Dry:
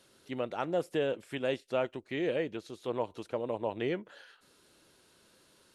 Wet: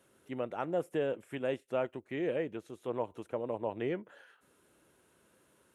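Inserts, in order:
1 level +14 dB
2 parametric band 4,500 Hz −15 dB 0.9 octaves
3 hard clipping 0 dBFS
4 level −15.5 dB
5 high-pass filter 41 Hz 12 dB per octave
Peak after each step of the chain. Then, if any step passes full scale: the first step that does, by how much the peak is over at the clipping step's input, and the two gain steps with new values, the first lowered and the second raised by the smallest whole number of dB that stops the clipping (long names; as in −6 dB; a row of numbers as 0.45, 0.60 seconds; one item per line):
−3.0, −4.0, −4.0, −19.5, −19.5 dBFS
no step passes full scale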